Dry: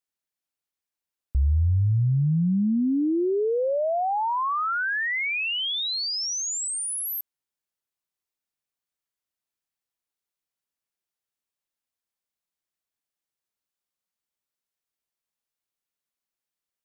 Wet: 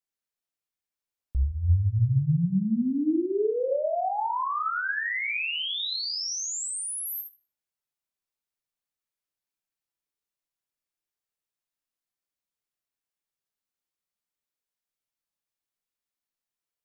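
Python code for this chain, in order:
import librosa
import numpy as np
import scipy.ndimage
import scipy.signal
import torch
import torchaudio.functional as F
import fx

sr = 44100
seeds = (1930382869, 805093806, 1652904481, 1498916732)

y = fx.brickwall_lowpass(x, sr, high_hz=2400.0, at=(3.25, 4.39))
y = fx.room_early_taps(y, sr, ms=(59, 78), db=(-8.0, -12.5))
y = fx.room_shoebox(y, sr, seeds[0], volume_m3=66.0, walls='mixed', distance_m=0.34)
y = y * librosa.db_to_amplitude(-4.5)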